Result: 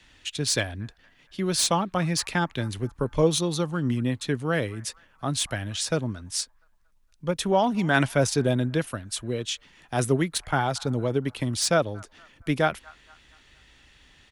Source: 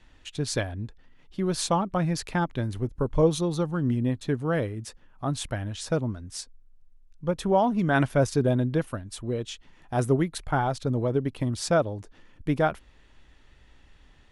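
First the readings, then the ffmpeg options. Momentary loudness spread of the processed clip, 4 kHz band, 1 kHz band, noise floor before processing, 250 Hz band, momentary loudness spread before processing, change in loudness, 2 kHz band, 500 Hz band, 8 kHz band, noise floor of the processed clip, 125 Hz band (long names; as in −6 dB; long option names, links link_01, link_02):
12 LU, +8.0 dB, +0.5 dB, −56 dBFS, 0.0 dB, 15 LU, +1.0 dB, +4.5 dB, 0.0 dB, +8.0 dB, −61 dBFS, −0.5 dB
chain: -filter_complex "[0:a]highpass=frequency=52:poles=1,acrossover=split=160|1200|1600[link_01][link_02][link_03][link_04];[link_03]aecho=1:1:232|464|696|928|1160:0.355|0.163|0.0751|0.0345|0.0159[link_05];[link_04]aeval=exprs='0.141*sin(PI/2*1.78*val(0)/0.141)':channel_layout=same[link_06];[link_01][link_02][link_05][link_06]amix=inputs=4:normalize=0"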